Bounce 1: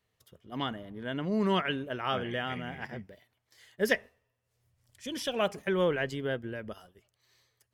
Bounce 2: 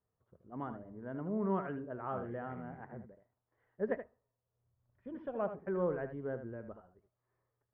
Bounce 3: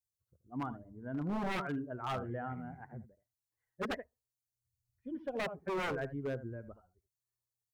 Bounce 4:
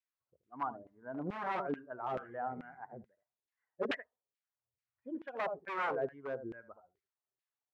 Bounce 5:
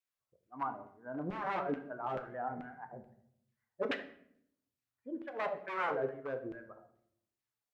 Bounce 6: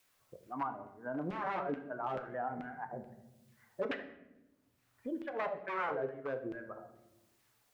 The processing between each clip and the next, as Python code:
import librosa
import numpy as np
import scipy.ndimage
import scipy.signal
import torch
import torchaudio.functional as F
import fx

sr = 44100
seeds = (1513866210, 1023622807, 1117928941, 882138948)

y1 = scipy.signal.sosfilt(scipy.signal.butter(4, 1300.0, 'lowpass', fs=sr, output='sos'), x)
y1 = y1 + 10.0 ** (-10.0 / 20.0) * np.pad(y1, (int(77 * sr / 1000.0), 0))[:len(y1)]
y1 = y1 * librosa.db_to_amplitude(-6.5)
y2 = fx.bin_expand(y1, sr, power=1.5)
y2 = 10.0 ** (-36.5 / 20.0) * (np.abs((y2 / 10.0 ** (-36.5 / 20.0) + 3.0) % 4.0 - 2.0) - 1.0)
y2 = y2 * librosa.db_to_amplitude(6.5)
y3 = fx.filter_lfo_bandpass(y2, sr, shape='saw_down', hz=2.3, low_hz=380.0, high_hz=2400.0, q=1.7)
y3 = y3 * librosa.db_to_amplitude(6.5)
y4 = fx.vibrato(y3, sr, rate_hz=6.1, depth_cents=37.0)
y4 = fx.room_shoebox(y4, sr, seeds[0], volume_m3=130.0, walls='mixed', distance_m=0.38)
y5 = fx.band_squash(y4, sr, depth_pct=70)